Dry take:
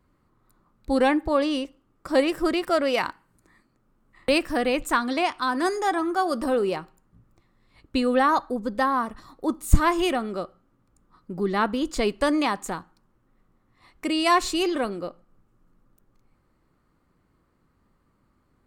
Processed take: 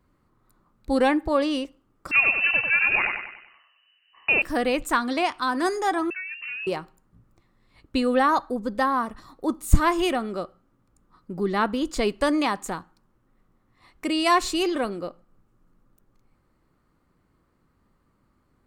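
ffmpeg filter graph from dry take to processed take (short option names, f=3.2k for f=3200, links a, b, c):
-filter_complex "[0:a]asettb=1/sr,asplit=3[a][b][c];[a]atrim=end=2.114[d];[b]atrim=start=2.11:end=4.42,asetpts=PTS-STARTPTS,afade=t=in:d=0.004:c=qsin,afade=t=out:st=2.306:d=0.004:c=qsin,aecho=1:1:96|192|288|384|480|576:0.596|0.268|0.121|0.0543|0.0244|0.011,atrim=end_sample=101871,lowpass=f=2.6k:t=q:w=0.5098,lowpass=f=2.6k:t=q:w=0.6013,lowpass=f=2.6k:t=q:w=0.9,lowpass=f=2.6k:t=q:w=2.563,afreqshift=-3000[e];[c]atrim=start=4.416[f];[d][e]acrossfade=d=0.004:c1=hsin:c2=qsin[g];[g][f]acrossfade=d=0.004:c1=qsin:c2=hsin,asettb=1/sr,asplit=3[h][i][j];[h]atrim=end=6.104[k];[i]atrim=start=6.1:end=6.67,asetpts=PTS-STARTPTS,afade=t=in:d=0.004:c=qsin,afade=t=out:st=0.566:d=0.004:c=qsin,agate=range=-33dB:threshold=-25dB:ratio=3:release=100:detection=peak,acompressor=threshold=-32dB:ratio=5:attack=3.2:release=140:knee=1:detection=peak,lowpass=f=2.6k:t=q:w=0.5098,lowpass=f=2.6k:t=q:w=0.6013,lowpass=f=2.6k:t=q:w=0.9,lowpass=f=2.6k:t=q:w=2.563,afreqshift=-3000[l];[j]atrim=start=6.666[m];[k][l]acrossfade=d=0.004:c1=hsin:c2=qsin[n];[n][m]acrossfade=d=0.004:c1=qsin:c2=hsin"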